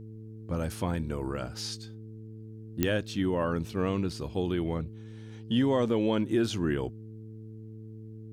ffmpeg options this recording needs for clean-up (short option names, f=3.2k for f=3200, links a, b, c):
-af "adeclick=t=4,bandreject=f=109.7:t=h:w=4,bandreject=f=219.4:t=h:w=4,bandreject=f=329.1:t=h:w=4,bandreject=f=438.8:t=h:w=4,agate=range=-21dB:threshold=-36dB"